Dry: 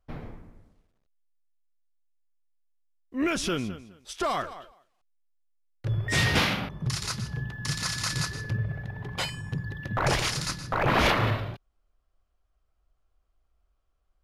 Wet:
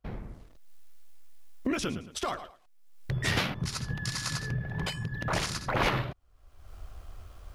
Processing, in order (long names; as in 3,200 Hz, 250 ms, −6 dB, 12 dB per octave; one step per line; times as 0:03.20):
camcorder AGC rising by 22 dB per second
time stretch by overlap-add 0.53×, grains 26 ms
level −2.5 dB